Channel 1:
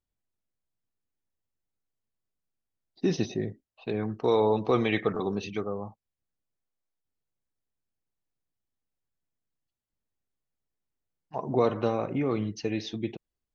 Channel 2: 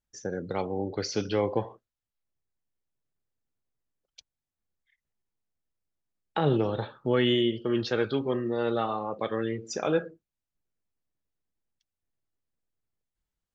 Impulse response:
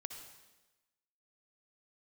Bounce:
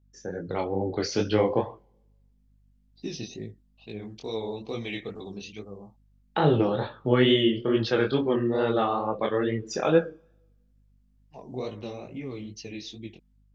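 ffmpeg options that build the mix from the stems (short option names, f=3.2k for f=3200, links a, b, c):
-filter_complex "[0:a]tiltshelf=f=970:g=7,aexciter=amount=6.6:drive=6.8:freq=2.1k,volume=-17dB[a];[1:a]lowpass=5.7k,volume=0.5dB,asplit=2[b][c];[c]volume=-23.5dB[d];[2:a]atrim=start_sample=2205[e];[d][e]afir=irnorm=-1:irlink=0[f];[a][b][f]amix=inputs=3:normalize=0,dynaudnorm=f=220:g=5:m=6dB,aeval=exprs='val(0)+0.001*(sin(2*PI*50*n/s)+sin(2*PI*2*50*n/s)/2+sin(2*PI*3*50*n/s)/3+sin(2*PI*4*50*n/s)/4+sin(2*PI*5*50*n/s)/5)':c=same,flanger=delay=18:depth=7:speed=2.3"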